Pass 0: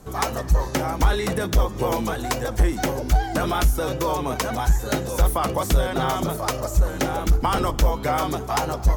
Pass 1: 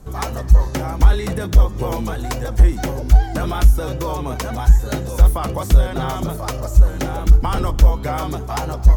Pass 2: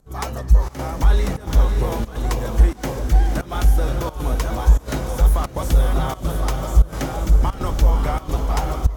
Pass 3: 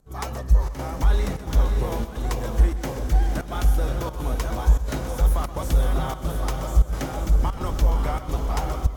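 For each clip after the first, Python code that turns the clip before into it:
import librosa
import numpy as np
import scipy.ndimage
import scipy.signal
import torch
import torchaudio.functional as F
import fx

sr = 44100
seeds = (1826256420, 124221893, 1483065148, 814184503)

y1 = fx.low_shelf(x, sr, hz=130.0, db=12.0)
y1 = y1 * librosa.db_to_amplitude(-2.0)
y2 = fx.echo_diffused(y1, sr, ms=545, feedback_pct=43, wet_db=-5.0)
y2 = fx.volume_shaper(y2, sr, bpm=88, per_beat=1, depth_db=-16, release_ms=105.0, shape='slow start')
y2 = y2 * librosa.db_to_amplitude(-2.5)
y3 = y2 + 10.0 ** (-13.0 / 20.0) * np.pad(y2, (int(127 * sr / 1000.0), 0))[:len(y2)]
y3 = y3 * librosa.db_to_amplitude(-4.0)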